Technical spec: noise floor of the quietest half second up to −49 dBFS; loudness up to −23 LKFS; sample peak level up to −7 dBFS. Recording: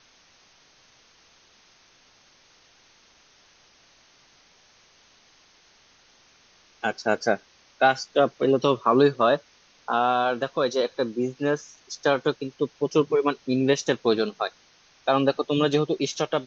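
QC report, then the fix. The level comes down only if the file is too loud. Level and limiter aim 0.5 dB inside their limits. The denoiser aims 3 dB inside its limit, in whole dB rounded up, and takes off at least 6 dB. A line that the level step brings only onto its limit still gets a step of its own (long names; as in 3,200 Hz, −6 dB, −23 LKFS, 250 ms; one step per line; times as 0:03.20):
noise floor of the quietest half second −58 dBFS: in spec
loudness −24.0 LKFS: in spec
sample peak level −6.0 dBFS: out of spec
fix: brickwall limiter −7.5 dBFS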